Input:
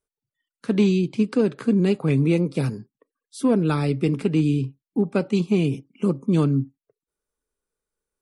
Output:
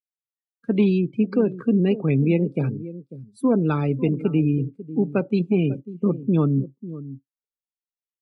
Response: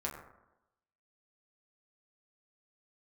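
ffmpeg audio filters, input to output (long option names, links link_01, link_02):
-filter_complex "[0:a]asplit=2[link_01][link_02];[link_02]aecho=0:1:545:0.188[link_03];[link_01][link_03]amix=inputs=2:normalize=0,afftdn=noise_reduction=30:noise_floor=-33"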